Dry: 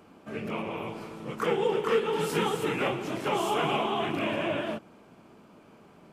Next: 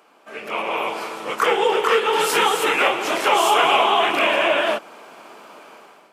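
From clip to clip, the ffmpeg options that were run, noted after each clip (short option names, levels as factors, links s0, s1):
-filter_complex "[0:a]dynaudnorm=f=250:g=5:m=4.47,highpass=630,asplit=2[s0][s1];[s1]alimiter=limit=0.168:level=0:latency=1:release=221,volume=1.19[s2];[s0][s2]amix=inputs=2:normalize=0,volume=0.794"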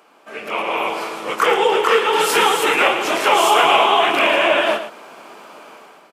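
-af "aecho=1:1:112:0.299,volume=1.33"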